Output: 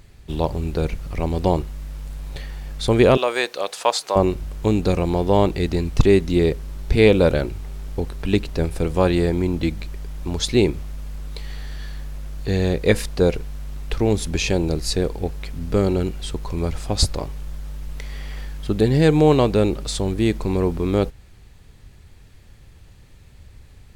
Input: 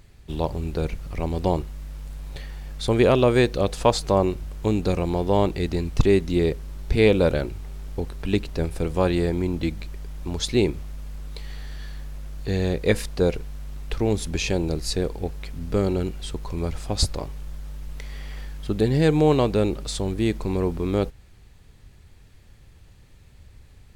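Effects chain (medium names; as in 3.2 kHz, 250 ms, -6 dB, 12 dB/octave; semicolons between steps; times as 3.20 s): 3.17–4.16 s: high-pass 700 Hz 12 dB/octave; trim +3.5 dB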